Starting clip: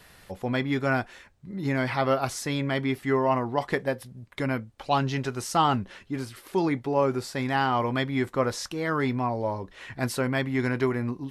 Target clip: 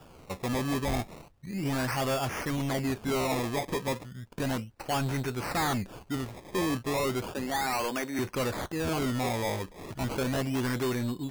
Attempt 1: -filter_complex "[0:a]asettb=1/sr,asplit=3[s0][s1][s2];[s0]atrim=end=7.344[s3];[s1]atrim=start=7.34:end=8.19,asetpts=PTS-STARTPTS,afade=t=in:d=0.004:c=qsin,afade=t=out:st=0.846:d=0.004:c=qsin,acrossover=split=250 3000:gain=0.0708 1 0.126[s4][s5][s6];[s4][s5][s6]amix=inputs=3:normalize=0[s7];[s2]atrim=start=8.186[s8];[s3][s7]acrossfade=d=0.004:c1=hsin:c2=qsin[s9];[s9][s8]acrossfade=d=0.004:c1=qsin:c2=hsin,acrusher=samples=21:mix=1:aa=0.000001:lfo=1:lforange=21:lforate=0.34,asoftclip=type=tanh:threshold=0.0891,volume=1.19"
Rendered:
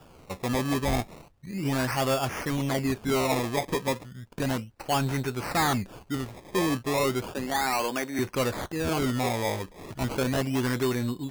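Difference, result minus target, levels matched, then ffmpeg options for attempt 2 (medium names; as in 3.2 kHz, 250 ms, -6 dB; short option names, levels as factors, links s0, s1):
saturation: distortion -5 dB
-filter_complex "[0:a]asettb=1/sr,asplit=3[s0][s1][s2];[s0]atrim=end=7.344[s3];[s1]atrim=start=7.34:end=8.19,asetpts=PTS-STARTPTS,afade=t=in:d=0.004:c=qsin,afade=t=out:st=0.846:d=0.004:c=qsin,acrossover=split=250 3000:gain=0.0708 1 0.126[s4][s5][s6];[s4][s5][s6]amix=inputs=3:normalize=0[s7];[s2]atrim=start=8.186[s8];[s3][s7]acrossfade=d=0.004:c1=hsin:c2=qsin[s9];[s9][s8]acrossfade=d=0.004:c1=qsin:c2=hsin,acrusher=samples=21:mix=1:aa=0.000001:lfo=1:lforange=21:lforate=0.34,asoftclip=type=tanh:threshold=0.0447,volume=1.19"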